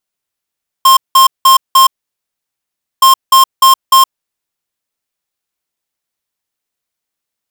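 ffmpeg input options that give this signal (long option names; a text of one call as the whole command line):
ffmpeg -f lavfi -i "aevalsrc='0.562*(2*lt(mod(1060*t,1),0.5)-1)*clip(min(mod(mod(t,2.17),0.3),0.12-mod(mod(t,2.17),0.3))/0.005,0,1)*lt(mod(t,2.17),1.2)':duration=4.34:sample_rate=44100" out.wav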